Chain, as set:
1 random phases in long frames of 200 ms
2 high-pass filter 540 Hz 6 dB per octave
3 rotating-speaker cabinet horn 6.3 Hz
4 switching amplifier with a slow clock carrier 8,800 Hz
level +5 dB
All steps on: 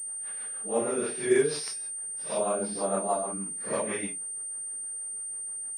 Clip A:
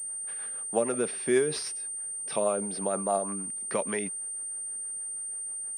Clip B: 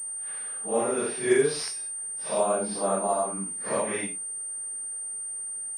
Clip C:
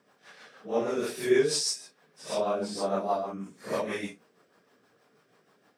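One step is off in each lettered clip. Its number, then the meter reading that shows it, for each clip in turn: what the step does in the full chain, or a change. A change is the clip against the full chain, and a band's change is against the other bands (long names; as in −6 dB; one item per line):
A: 1, change in momentary loudness spread −1 LU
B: 3, 1 kHz band +2.0 dB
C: 4, 8 kHz band −9.0 dB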